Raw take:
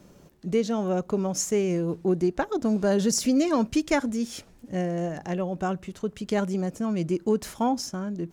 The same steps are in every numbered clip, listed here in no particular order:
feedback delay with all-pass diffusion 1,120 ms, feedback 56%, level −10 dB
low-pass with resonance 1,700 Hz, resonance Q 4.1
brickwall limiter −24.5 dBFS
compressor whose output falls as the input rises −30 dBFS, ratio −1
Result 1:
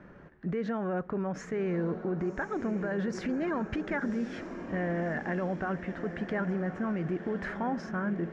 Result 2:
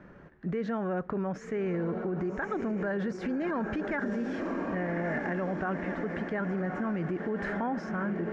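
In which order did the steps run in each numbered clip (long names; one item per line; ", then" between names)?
low-pass with resonance, then brickwall limiter, then compressor whose output falls as the input rises, then feedback delay with all-pass diffusion
feedback delay with all-pass diffusion, then brickwall limiter, then low-pass with resonance, then compressor whose output falls as the input rises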